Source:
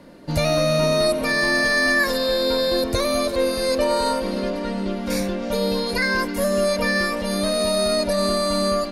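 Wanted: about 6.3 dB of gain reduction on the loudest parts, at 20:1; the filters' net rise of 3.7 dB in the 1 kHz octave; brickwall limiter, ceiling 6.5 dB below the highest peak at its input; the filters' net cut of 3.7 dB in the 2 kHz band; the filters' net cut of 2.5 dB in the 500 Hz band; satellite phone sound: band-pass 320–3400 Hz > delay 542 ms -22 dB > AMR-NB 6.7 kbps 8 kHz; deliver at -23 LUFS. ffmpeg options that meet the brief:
-af "equalizer=f=500:t=o:g=-4.5,equalizer=f=1000:t=o:g=7,equalizer=f=2000:t=o:g=-6,acompressor=threshold=0.0794:ratio=20,alimiter=limit=0.1:level=0:latency=1,highpass=320,lowpass=3400,aecho=1:1:542:0.0794,volume=2.66" -ar 8000 -c:a libopencore_amrnb -b:a 6700

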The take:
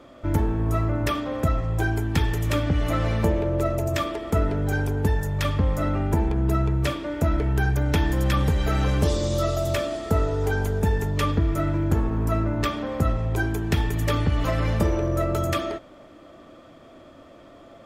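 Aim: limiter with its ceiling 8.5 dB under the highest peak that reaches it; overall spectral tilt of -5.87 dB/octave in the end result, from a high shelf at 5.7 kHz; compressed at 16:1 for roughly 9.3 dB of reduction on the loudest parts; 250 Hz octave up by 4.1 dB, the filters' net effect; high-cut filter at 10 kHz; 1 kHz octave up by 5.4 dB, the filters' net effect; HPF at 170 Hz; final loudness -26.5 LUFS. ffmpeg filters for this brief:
-af "highpass=170,lowpass=10000,equalizer=f=250:t=o:g=6.5,equalizer=f=1000:t=o:g=7,highshelf=f=5700:g=-4,acompressor=threshold=0.0501:ratio=16,volume=1.88,alimiter=limit=0.141:level=0:latency=1"

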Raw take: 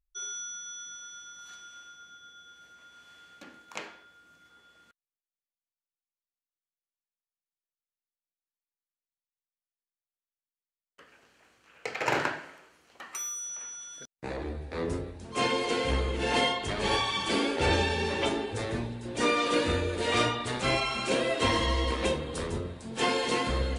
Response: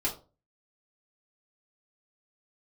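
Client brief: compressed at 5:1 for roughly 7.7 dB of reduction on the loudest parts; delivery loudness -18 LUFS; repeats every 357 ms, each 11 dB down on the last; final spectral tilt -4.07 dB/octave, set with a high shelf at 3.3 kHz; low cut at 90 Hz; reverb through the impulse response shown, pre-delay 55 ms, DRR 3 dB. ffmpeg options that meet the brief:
-filter_complex "[0:a]highpass=90,highshelf=f=3300:g=-5,acompressor=threshold=0.0282:ratio=5,aecho=1:1:357|714|1071:0.282|0.0789|0.0221,asplit=2[s0][s1];[1:a]atrim=start_sample=2205,adelay=55[s2];[s1][s2]afir=irnorm=-1:irlink=0,volume=0.355[s3];[s0][s3]amix=inputs=2:normalize=0,volume=5.96"

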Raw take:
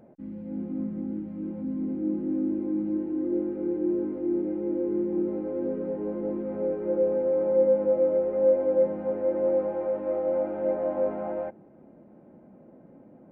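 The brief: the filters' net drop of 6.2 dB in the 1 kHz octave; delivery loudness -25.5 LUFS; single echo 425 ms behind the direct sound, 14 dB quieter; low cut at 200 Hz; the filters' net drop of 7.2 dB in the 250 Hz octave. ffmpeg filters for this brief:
-af "highpass=200,equalizer=f=250:t=o:g=-8.5,equalizer=f=1000:t=o:g=-8,aecho=1:1:425:0.2,volume=2"

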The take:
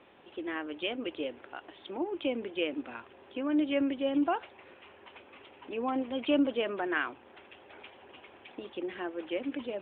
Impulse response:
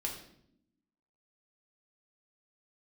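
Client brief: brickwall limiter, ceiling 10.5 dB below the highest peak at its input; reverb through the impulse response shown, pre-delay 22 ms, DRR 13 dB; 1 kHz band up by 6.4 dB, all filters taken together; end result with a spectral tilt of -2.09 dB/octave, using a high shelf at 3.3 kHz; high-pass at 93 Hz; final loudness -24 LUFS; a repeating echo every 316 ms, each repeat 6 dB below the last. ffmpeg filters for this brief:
-filter_complex "[0:a]highpass=93,equalizer=f=1000:t=o:g=9,highshelf=f=3300:g=-3.5,alimiter=limit=0.0708:level=0:latency=1,aecho=1:1:316|632|948|1264|1580|1896:0.501|0.251|0.125|0.0626|0.0313|0.0157,asplit=2[s0][s1];[1:a]atrim=start_sample=2205,adelay=22[s2];[s1][s2]afir=irnorm=-1:irlink=0,volume=0.188[s3];[s0][s3]amix=inputs=2:normalize=0,volume=2.99"

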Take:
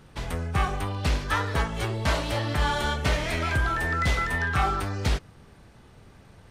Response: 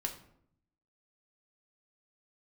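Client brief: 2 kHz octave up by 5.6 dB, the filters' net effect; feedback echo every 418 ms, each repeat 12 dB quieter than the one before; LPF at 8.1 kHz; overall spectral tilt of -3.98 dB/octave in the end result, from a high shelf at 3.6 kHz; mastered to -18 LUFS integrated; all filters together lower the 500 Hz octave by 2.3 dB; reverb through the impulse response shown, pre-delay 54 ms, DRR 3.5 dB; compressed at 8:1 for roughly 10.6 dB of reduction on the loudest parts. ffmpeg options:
-filter_complex "[0:a]lowpass=8100,equalizer=f=500:t=o:g=-3.5,equalizer=f=2000:t=o:g=5,highshelf=f=3600:g=8,acompressor=threshold=0.0355:ratio=8,aecho=1:1:418|836|1254:0.251|0.0628|0.0157,asplit=2[s0][s1];[1:a]atrim=start_sample=2205,adelay=54[s2];[s1][s2]afir=irnorm=-1:irlink=0,volume=0.596[s3];[s0][s3]amix=inputs=2:normalize=0,volume=4.22"

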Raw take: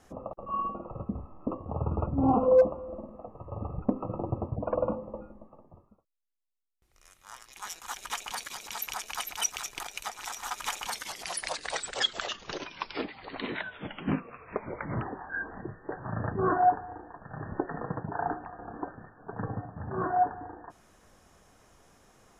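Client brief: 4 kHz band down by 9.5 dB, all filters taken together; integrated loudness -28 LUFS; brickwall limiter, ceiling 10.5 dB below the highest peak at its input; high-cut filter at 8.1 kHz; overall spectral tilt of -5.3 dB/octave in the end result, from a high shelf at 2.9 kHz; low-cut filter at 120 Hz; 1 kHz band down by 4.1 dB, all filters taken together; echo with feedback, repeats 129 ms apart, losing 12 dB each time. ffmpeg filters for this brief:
-af "highpass=120,lowpass=8100,equalizer=f=1000:t=o:g=-5.5,highshelf=f=2900:g=-5.5,equalizer=f=4000:t=o:g=-8,alimiter=limit=0.075:level=0:latency=1,aecho=1:1:129|258|387:0.251|0.0628|0.0157,volume=2.99"

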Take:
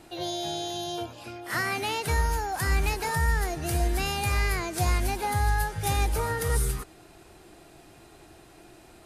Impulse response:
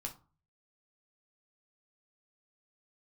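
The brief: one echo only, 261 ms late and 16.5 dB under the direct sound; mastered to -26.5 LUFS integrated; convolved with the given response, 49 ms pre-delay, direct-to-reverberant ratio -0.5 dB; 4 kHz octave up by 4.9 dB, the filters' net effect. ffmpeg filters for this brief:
-filter_complex "[0:a]equalizer=f=4000:t=o:g=6,aecho=1:1:261:0.15,asplit=2[s0][s1];[1:a]atrim=start_sample=2205,adelay=49[s2];[s1][s2]afir=irnorm=-1:irlink=0,volume=1.26[s3];[s0][s3]amix=inputs=2:normalize=0,volume=0.75"

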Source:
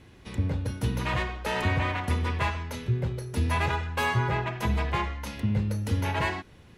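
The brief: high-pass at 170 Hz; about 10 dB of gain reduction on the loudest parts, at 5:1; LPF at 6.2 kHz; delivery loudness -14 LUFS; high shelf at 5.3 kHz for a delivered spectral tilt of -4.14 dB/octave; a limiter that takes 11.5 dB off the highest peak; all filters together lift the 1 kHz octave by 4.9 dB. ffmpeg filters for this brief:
-af "highpass=170,lowpass=6200,equalizer=f=1000:t=o:g=5.5,highshelf=f=5300:g=5.5,acompressor=threshold=0.0251:ratio=5,volume=20,alimiter=limit=0.562:level=0:latency=1"

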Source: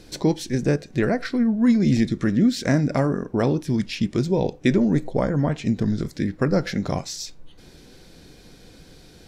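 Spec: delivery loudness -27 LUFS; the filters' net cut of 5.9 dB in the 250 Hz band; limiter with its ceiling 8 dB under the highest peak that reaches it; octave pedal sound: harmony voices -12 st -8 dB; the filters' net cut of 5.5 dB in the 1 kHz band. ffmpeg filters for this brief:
-filter_complex "[0:a]equalizer=f=250:t=o:g=-7,equalizer=f=1000:t=o:g=-7.5,alimiter=limit=0.15:level=0:latency=1,asplit=2[s0][s1];[s1]asetrate=22050,aresample=44100,atempo=2,volume=0.398[s2];[s0][s2]amix=inputs=2:normalize=0,volume=1.06"

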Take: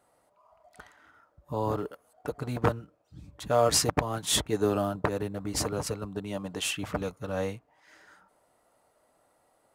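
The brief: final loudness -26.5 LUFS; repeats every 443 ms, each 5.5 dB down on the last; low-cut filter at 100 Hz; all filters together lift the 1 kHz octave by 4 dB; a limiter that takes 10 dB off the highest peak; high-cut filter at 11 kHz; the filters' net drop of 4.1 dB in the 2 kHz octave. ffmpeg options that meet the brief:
-af "highpass=100,lowpass=11000,equalizer=f=1000:t=o:g=7.5,equalizer=f=2000:t=o:g=-9,alimiter=limit=0.126:level=0:latency=1,aecho=1:1:443|886|1329|1772|2215|2658|3101:0.531|0.281|0.149|0.079|0.0419|0.0222|0.0118,volume=1.68"

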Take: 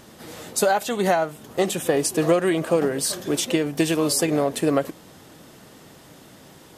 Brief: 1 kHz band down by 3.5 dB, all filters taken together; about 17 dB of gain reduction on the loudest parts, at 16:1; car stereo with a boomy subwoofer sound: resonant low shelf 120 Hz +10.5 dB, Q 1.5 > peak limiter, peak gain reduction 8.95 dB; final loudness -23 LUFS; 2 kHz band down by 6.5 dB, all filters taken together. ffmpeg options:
-af "equalizer=f=1000:t=o:g=-3.5,equalizer=f=2000:t=o:g=-7.5,acompressor=threshold=0.0224:ratio=16,lowshelf=f=120:t=q:w=1.5:g=10.5,volume=7.94,alimiter=limit=0.224:level=0:latency=1"

